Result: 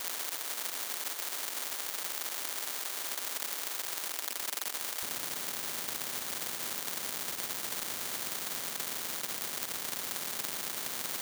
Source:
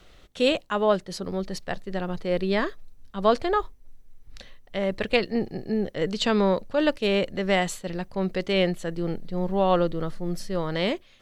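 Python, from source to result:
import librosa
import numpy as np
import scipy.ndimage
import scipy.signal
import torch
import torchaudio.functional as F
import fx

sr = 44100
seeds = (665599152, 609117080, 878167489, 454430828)

y = np.sign(x) * np.sqrt(np.mean(np.square(x)))
y = y + 0.92 * np.pad(y, (int(5.0 * sr / 1000.0), 0))[:len(y)]
y = y + 10.0 ** (-6.5 / 20.0) * np.pad(y, (int(442 * sr / 1000.0), 0))[:len(y)]
y = fx.spec_gate(y, sr, threshold_db=-30, keep='weak')
y = fx.echo_feedback(y, sr, ms=135, feedback_pct=56, wet_db=-13)
y = fx.sample_hold(y, sr, seeds[0], rate_hz=2600.0, jitter_pct=0)
y = fx.highpass(y, sr, hz=fx.steps((0.0, 860.0), (5.03, 240.0)), slope=24)
y = fx.spectral_comp(y, sr, ratio=10.0)
y = y * 10.0 ** (6.5 / 20.0)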